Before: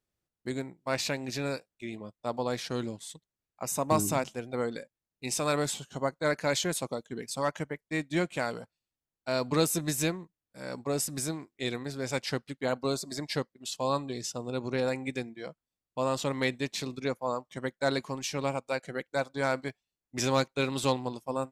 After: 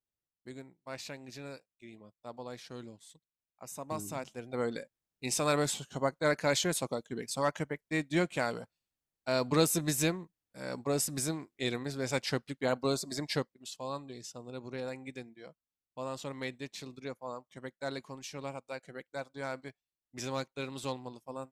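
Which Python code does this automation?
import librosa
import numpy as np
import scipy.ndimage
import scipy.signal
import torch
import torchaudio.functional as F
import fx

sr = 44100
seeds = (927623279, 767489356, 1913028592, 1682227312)

y = fx.gain(x, sr, db=fx.line((4.05, -12.0), (4.69, -0.5), (13.36, -0.5), (13.81, -9.5)))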